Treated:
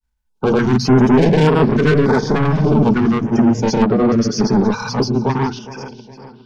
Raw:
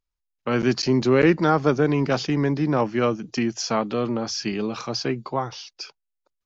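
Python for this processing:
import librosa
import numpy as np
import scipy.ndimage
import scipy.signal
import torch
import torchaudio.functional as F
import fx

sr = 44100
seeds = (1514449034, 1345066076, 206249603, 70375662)

y = fx.spec_quant(x, sr, step_db=30)
y = fx.low_shelf(y, sr, hz=210.0, db=9.0)
y = fx.hum_notches(y, sr, base_hz=60, count=4)
y = fx.small_body(y, sr, hz=(220.0, 420.0, 880.0, 1500.0), ring_ms=35, db=15)
y = 10.0 ** (-13.5 / 20.0) * np.tanh(y / 10.0 ** (-13.5 / 20.0))
y = fx.granulator(y, sr, seeds[0], grain_ms=86.0, per_s=30.0, spray_ms=100.0, spread_st=0)
y = fx.echo_feedback(y, sr, ms=413, feedback_pct=52, wet_db=-17.0)
y = fx.filter_held_notch(y, sr, hz=3.4, low_hz=370.0, high_hz=6300.0)
y = y * librosa.db_to_amplitude(6.5)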